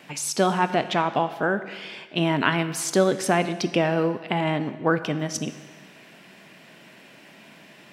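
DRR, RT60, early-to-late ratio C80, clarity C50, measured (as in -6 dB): 11.0 dB, 1.4 s, 13.5 dB, 12.5 dB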